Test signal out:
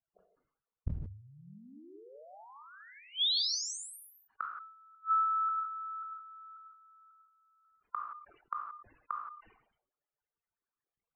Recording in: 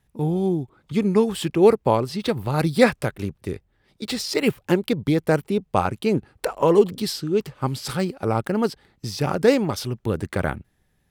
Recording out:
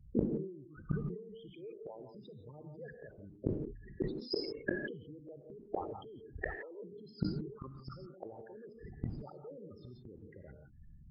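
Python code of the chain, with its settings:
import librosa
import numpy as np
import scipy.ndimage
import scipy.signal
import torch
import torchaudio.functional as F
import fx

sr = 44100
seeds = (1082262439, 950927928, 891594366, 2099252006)

p1 = fx.envelope_sharpen(x, sr, power=3.0)
p2 = scipy.signal.sosfilt(scipy.signal.butter(2, 2200.0, 'lowpass', fs=sr, output='sos'), p1)
p3 = fx.over_compress(p2, sr, threshold_db=-26.0, ratio=-1.0)
p4 = p2 + F.gain(torch.from_numpy(p3), 2.0).numpy()
p5 = fx.spec_topn(p4, sr, count=16)
p6 = fx.gate_flip(p5, sr, shuts_db=-21.0, range_db=-35)
p7 = fx.rev_gated(p6, sr, seeds[0], gate_ms=190, shape='rising', drr_db=4.5)
y = fx.sustainer(p7, sr, db_per_s=83.0)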